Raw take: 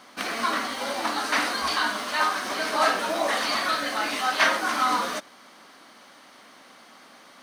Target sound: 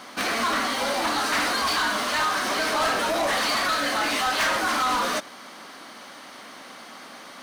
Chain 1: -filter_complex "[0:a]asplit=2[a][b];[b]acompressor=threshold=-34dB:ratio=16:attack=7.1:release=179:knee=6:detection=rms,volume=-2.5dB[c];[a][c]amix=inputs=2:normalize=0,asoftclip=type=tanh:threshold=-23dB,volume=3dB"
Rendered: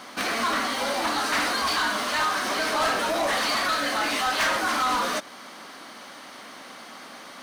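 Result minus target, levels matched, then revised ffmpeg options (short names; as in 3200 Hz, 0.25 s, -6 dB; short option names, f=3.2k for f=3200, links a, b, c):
compressor: peak gain reduction +8.5 dB
-filter_complex "[0:a]asplit=2[a][b];[b]acompressor=threshold=-25dB:ratio=16:attack=7.1:release=179:knee=6:detection=rms,volume=-2.5dB[c];[a][c]amix=inputs=2:normalize=0,asoftclip=type=tanh:threshold=-23dB,volume=3dB"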